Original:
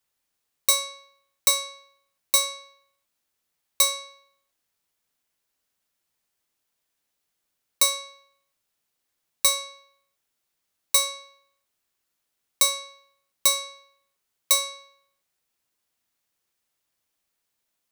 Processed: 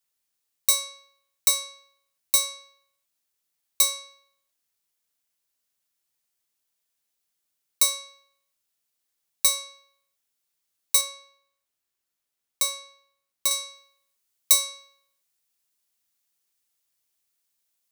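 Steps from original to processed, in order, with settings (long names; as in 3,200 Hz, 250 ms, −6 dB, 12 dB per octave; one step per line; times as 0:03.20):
high-shelf EQ 3,200 Hz +8 dB, from 0:11.01 +3 dB, from 0:13.51 +11 dB
level −7 dB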